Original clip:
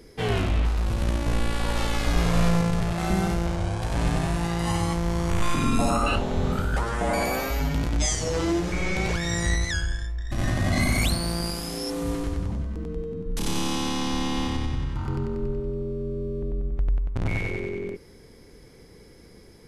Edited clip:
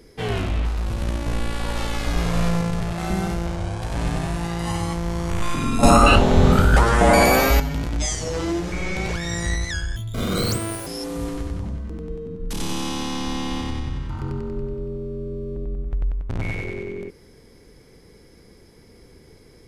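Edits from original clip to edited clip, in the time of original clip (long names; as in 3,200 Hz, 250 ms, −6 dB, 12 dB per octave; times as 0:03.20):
0:05.83–0:07.60: clip gain +10.5 dB
0:09.96–0:11.73: play speed 195%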